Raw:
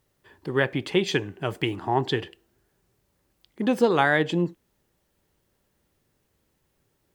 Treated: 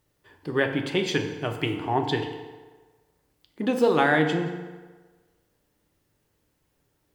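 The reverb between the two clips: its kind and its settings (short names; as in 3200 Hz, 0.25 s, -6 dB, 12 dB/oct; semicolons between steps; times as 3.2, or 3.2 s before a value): FDN reverb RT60 1.4 s, low-frequency decay 0.8×, high-frequency decay 0.7×, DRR 4.5 dB; gain -1.5 dB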